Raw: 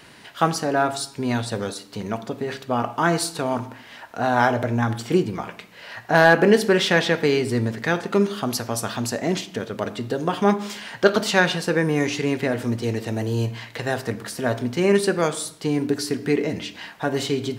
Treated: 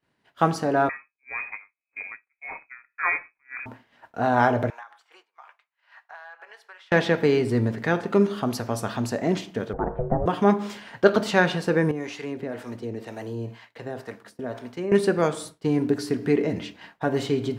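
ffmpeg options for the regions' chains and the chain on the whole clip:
-filter_complex "[0:a]asettb=1/sr,asplit=3[s0][s1][s2];[s0]atrim=end=0.894[s3];[s1]atrim=start=0.89:end=3.66,asetpts=PTS-STARTPTS,afade=t=in:d=0.004:c=qsin,afade=t=out:st=2.766:d=0.004:c=qsin,aeval=exprs='val(0)+0.00708*(sin(2*PI*50*n/s)+sin(2*PI*2*50*n/s)/2+sin(2*PI*3*50*n/s)/3+sin(2*PI*4*50*n/s)/4+sin(2*PI*5*50*n/s)/5)':c=same,lowpass=f=2200:t=q:w=0.5098,lowpass=f=2200:t=q:w=0.6013,lowpass=f=2200:t=q:w=0.9,lowpass=f=2200:t=q:w=2.563,afreqshift=-2600,aeval=exprs='val(0)*pow(10,-20*(0.5-0.5*cos(2*PI*1.8*n/s))/20)':c=same[s4];[s2]atrim=start=3.656[s5];[s3][s4]acrossfade=d=0.004:c1=hsin:c2=qsin[s6];[s6][s5]acrossfade=d=0.004:c1=qsin:c2=hsin,asettb=1/sr,asplit=3[s7][s8][s9];[s7]atrim=end=4.704[s10];[s8]atrim=start=4.7:end=6.92,asetpts=PTS-STARTPTS,afade=t=in:d=0.004:c=qsin,afade=t=out:st=2.216:d=0.004:c=qsin,highpass=f=910:w=0.5412,highpass=f=910:w=1.3066,highshelf=f=4100:g=-9,acompressor=threshold=0.0224:ratio=16:attack=3.2:release=140:knee=1:detection=peak[s11];[s9]atrim=start=6.916[s12];[s10][s11]acrossfade=d=0.004:c1=hsin:c2=qsin[s13];[s13][s12]acrossfade=d=0.004:c1=qsin:c2=hsin,asettb=1/sr,asplit=3[s14][s15][s16];[s14]atrim=end=9.734[s17];[s15]atrim=start=9.73:end=10.26,asetpts=PTS-STARTPTS,afade=t=in:d=0.004:c=qsin,afade=t=out:st=0.526:d=0.004:c=qsin,lowpass=f=1200:w=0.5412,lowpass=f=1200:w=1.3066,aeval=exprs='val(0)*sin(2*PI*260*n/s)':c=same,acontrast=34[s18];[s16]atrim=start=10.256[s19];[s17][s18]acrossfade=d=0.004:c1=hsin:c2=qsin[s20];[s20][s19]acrossfade=d=0.004:c1=qsin:c2=hsin,asettb=1/sr,asplit=3[s21][s22][s23];[s21]atrim=end=11.914[s24];[s22]atrim=start=11.91:end=14.92,asetpts=PTS-STARTPTS,afade=t=in:d=0.004:c=qsin,afade=t=out:st=3.006:d=0.004:c=qsin,highpass=f=240:p=1,acrossover=split=600[s25][s26];[s25]aeval=exprs='val(0)*(1-0.7/2+0.7/2*cos(2*PI*2*n/s))':c=same[s27];[s26]aeval=exprs='val(0)*(1-0.7/2-0.7/2*cos(2*PI*2*n/s))':c=same[s28];[s27][s28]amix=inputs=2:normalize=0,acompressor=threshold=0.0355:ratio=2:attack=3.2:release=140:knee=1:detection=peak[s29];[s23]atrim=start=14.916[s30];[s24][s29]acrossfade=d=0.004:c1=hsin:c2=qsin[s31];[s31][s30]acrossfade=d=0.004:c1=qsin:c2=hsin,highshelf=f=2500:g=-10,agate=range=0.0224:threshold=0.0178:ratio=3:detection=peak"

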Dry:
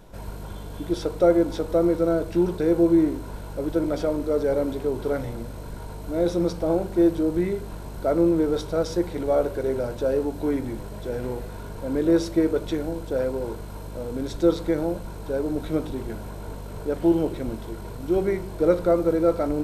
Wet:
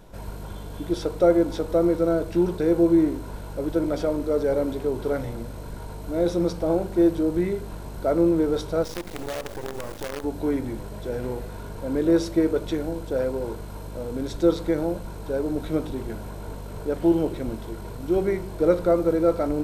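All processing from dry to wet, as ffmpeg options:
-filter_complex "[0:a]asettb=1/sr,asplit=3[s0][s1][s2];[s0]atrim=end=8.844[s3];[s1]atrim=start=8.84:end=10.24,asetpts=PTS-STARTPTS,afade=t=in:d=0.004:c=qsin,afade=t=out:st=1.396:d=0.004:c=qsin,acrusher=bits=4:dc=4:mix=0:aa=0.000001,acompressor=threshold=0.0501:ratio=10:attack=3.2:release=140:knee=1:detection=peak[s4];[s2]atrim=start=10.236[s5];[s3][s4]acrossfade=d=0.004:c1=hsin:c2=qsin[s6];[s6][s5]acrossfade=d=0.004:c1=qsin:c2=hsin"

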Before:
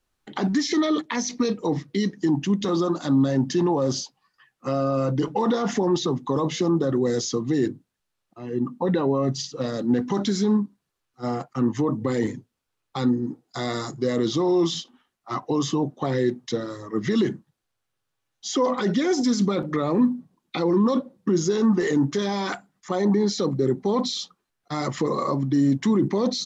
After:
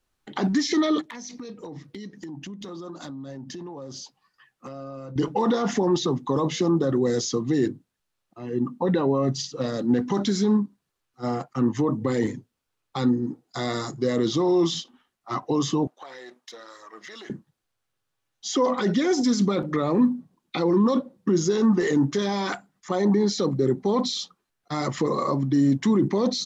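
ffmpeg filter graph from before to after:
-filter_complex "[0:a]asettb=1/sr,asplit=3[s0][s1][s2];[s0]atrim=end=1.014[s3];[s1]atrim=start=1.01:end=5.16,asetpts=PTS-STARTPTS,afade=t=in:d=0.004:c=qsin,afade=t=out:st=4.146:d=0.004:c=qsin,acompressor=threshold=0.02:ratio=12:attack=3.2:release=140:knee=1:detection=peak,volume=29.9,asoftclip=hard,volume=0.0335[s4];[s2]atrim=start=5.156[s5];[s3][s4]acrossfade=d=0.004:c1=hsin:c2=qsin[s6];[s6][s5]acrossfade=d=0.004:c1=qsin:c2=hsin,asettb=1/sr,asplit=3[s7][s8][s9];[s7]atrim=end=15.874[s10];[s8]atrim=start=15.87:end=17.3,asetpts=PTS-STARTPTS,afade=t=in:d=0.004:c=qsin,afade=t=out:st=1.426:d=0.004:c=qsin,aeval=exprs='if(lt(val(0),0),0.708*val(0),val(0))':c=same,highpass=850,acompressor=threshold=0.01:ratio=3:attack=3.2:release=140:knee=1:detection=peak[s11];[s9]atrim=start=17.296[s12];[s10][s11]acrossfade=d=0.004:c1=hsin:c2=qsin[s13];[s13][s12]acrossfade=d=0.004:c1=qsin:c2=hsin"

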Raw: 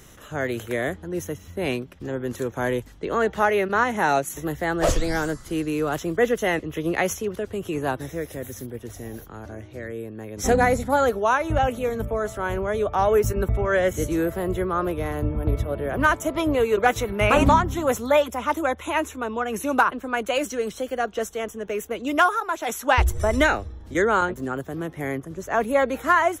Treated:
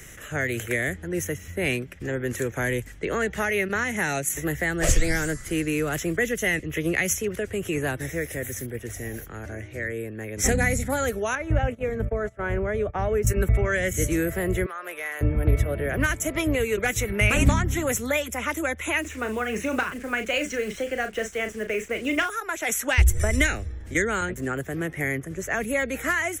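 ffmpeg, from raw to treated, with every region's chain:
-filter_complex "[0:a]asettb=1/sr,asplit=3[s0][s1][s2];[s0]atrim=end=11.354[s3];[s1]atrim=start=11.35:end=13.27,asetpts=PTS-STARTPTS,afade=t=in:d=0.004:c=qsin,afade=t=out:st=1.916:d=0.004:c=qsin,lowpass=f=1200:p=1,agate=range=0.112:threshold=0.0282:ratio=16:release=100:detection=peak[s4];[s2]atrim=start=13.266[s5];[s3][s4]acrossfade=d=0.004:c1=hsin:c2=qsin[s6];[s6][s5]acrossfade=d=0.004:c1=qsin:c2=hsin,asettb=1/sr,asplit=3[s7][s8][s9];[s7]atrim=end=14.664[s10];[s8]atrim=start=14.66:end=15.21,asetpts=PTS-STARTPTS,afade=t=in:d=0.004:c=qsin,afade=t=out:st=0.546:d=0.004:c=qsin,highpass=840,acompressor=threshold=0.02:ratio=2.5:attack=3.2:release=140:knee=1:detection=peak[s11];[s9]atrim=start=15.206[s12];[s10][s11]acrossfade=d=0.004:c1=hsin:c2=qsin[s13];[s13][s12]acrossfade=d=0.004:c1=qsin:c2=hsin,asettb=1/sr,asplit=3[s14][s15][s16];[s14]atrim=end=19.014[s17];[s15]atrim=start=19.01:end=22.3,asetpts=PTS-STARTPTS,afade=t=in:d=0.004:c=qsin,afade=t=out:st=3.286:d=0.004:c=qsin,lowpass=4700,acrusher=bits=7:mix=0:aa=0.5,asplit=2[s18][s19];[s19]adelay=37,volume=0.376[s20];[s18][s20]amix=inputs=2:normalize=0,atrim=end_sample=145089[s21];[s16]atrim=start=22.296[s22];[s17][s21]acrossfade=d=0.004:c1=hsin:c2=qsin[s23];[s23][s22]acrossfade=d=0.004:c1=qsin:c2=hsin,equalizer=f=250:t=o:w=1:g=-4,equalizer=f=1000:t=o:w=1:g=-10,equalizer=f=2000:t=o:w=1:g=11,equalizer=f=4000:t=o:w=1:g=-8,equalizer=f=8000:t=o:w=1:g=6,acrossover=split=280|3000[s24][s25][s26];[s25]acompressor=threshold=0.0355:ratio=6[s27];[s24][s27][s26]amix=inputs=3:normalize=0,volume=1.5"

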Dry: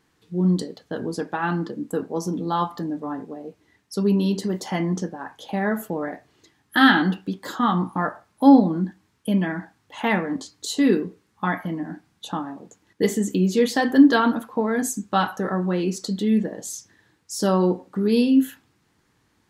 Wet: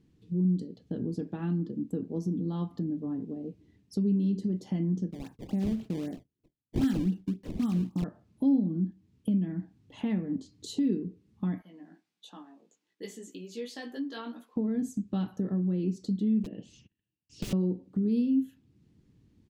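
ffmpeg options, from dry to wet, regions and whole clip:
-filter_complex "[0:a]asettb=1/sr,asplit=3[s0][s1][s2];[s0]atrim=end=5.114[s3];[s1]atrim=start=5.11:end=8.04,asetpts=PTS-STARTPTS,afade=t=in:d=0.004:c=qsin,afade=t=out:st=2.926:d=0.004:c=qsin,agate=range=0.0224:threshold=0.00501:ratio=3:release=100:detection=peak,acrusher=samples=19:mix=1:aa=0.000001:lfo=1:lforange=30.4:lforate=3.8[s4];[s2]atrim=start=8.036[s5];[s3][s4]acrossfade=d=0.004:c1=hsin:c2=qsin[s6];[s6][s5]acrossfade=d=0.004:c1=qsin:c2=hsin,asettb=1/sr,asplit=3[s7][s8][s9];[s7]atrim=end=11.624[s10];[s8]atrim=start=11.62:end=14.56,asetpts=PTS-STARTPTS,afade=t=in:d=0.004:c=qsin,afade=t=out:st=2.936:d=0.004:c=qsin,flanger=delay=16:depth=2.1:speed=1.4,highpass=850[s11];[s9]atrim=start=14.556[s12];[s10][s11]acrossfade=d=0.004:c1=hsin:c2=qsin[s13];[s13][s12]acrossfade=d=0.004:c1=qsin:c2=hsin,asettb=1/sr,asplit=3[s14][s15][s16];[s14]atrim=end=16.434[s17];[s15]atrim=start=16.43:end=17.53,asetpts=PTS-STARTPTS,afade=t=in:d=0.004:c=qsin,afade=t=out:st=1.096:d=0.004:c=qsin,agate=range=0.0316:threshold=0.002:ratio=16:release=100:detection=peak,lowpass=f=2800:t=q:w=13,aeval=exprs='(mod(10*val(0)+1,2)-1)/10':c=same[s18];[s16]atrim=start=17.526[s19];[s17][s18]acrossfade=d=0.004:c1=hsin:c2=qsin[s20];[s20][s19]acrossfade=d=0.004:c1=qsin:c2=hsin,firequalizer=gain_entry='entry(200,0);entry(530,-14);entry(850,-23);entry(1500,-25);entry(2600,-16)':delay=0.05:min_phase=1,acompressor=threshold=0.00891:ratio=2,highshelf=f=8400:g=-9.5,volume=2.11"

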